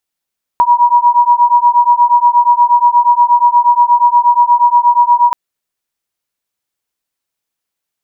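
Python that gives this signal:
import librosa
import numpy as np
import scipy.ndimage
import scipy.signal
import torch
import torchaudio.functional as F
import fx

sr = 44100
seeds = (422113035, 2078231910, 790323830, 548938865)

y = fx.two_tone_beats(sr, length_s=4.73, hz=958.0, beat_hz=8.4, level_db=-9.0)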